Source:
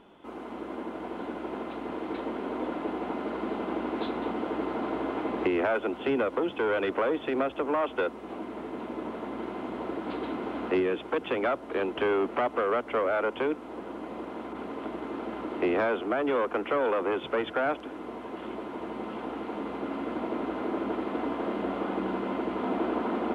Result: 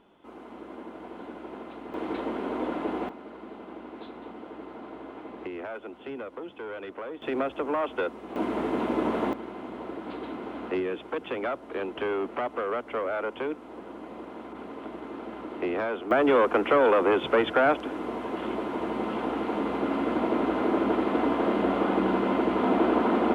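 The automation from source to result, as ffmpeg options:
ffmpeg -i in.wav -af "asetnsamples=nb_out_samples=441:pad=0,asendcmd='1.94 volume volume 2dB;3.09 volume volume -10.5dB;7.22 volume volume -0.5dB;8.36 volume volume 9dB;9.33 volume volume -3dB;16.11 volume volume 6dB',volume=-5dB" out.wav

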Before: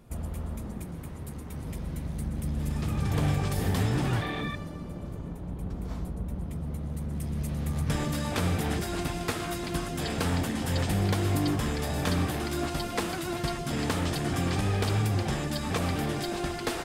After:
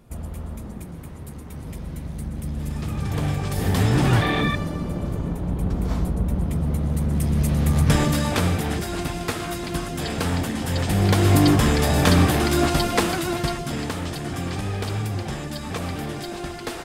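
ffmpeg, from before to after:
ffmpeg -i in.wav -af "volume=18dB,afade=type=in:start_time=3.44:duration=0.88:silence=0.354813,afade=type=out:start_time=7.87:duration=0.76:silence=0.446684,afade=type=in:start_time=10.82:duration=0.56:silence=0.446684,afade=type=out:start_time=12.75:duration=1.17:silence=0.281838" out.wav

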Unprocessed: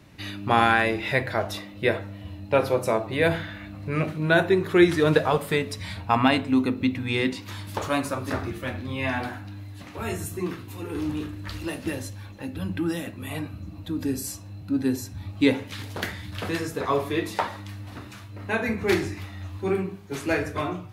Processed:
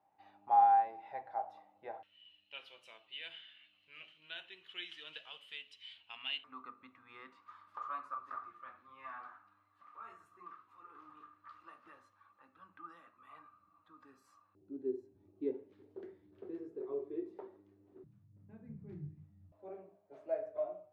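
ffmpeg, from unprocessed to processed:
ffmpeg -i in.wav -af "asetnsamples=nb_out_samples=441:pad=0,asendcmd='2.03 bandpass f 3000;6.44 bandpass f 1200;14.55 bandpass f 380;18.04 bandpass f 150;19.52 bandpass f 620',bandpass=frequency=800:width_type=q:width=18:csg=0" out.wav

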